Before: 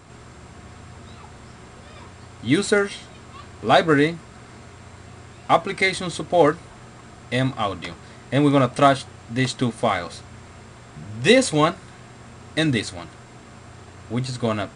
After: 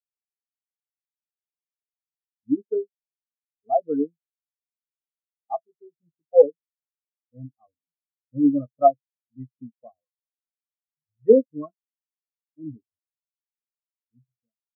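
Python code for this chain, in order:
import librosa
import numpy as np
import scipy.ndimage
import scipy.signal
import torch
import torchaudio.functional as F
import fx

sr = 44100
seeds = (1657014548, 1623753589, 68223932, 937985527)

y = fx.fade_out_tail(x, sr, length_s=0.84)
y = fx.filter_lfo_lowpass(y, sr, shape='sine', hz=4.9, low_hz=500.0, high_hz=1800.0, q=0.83)
y = fx.spectral_expand(y, sr, expansion=4.0)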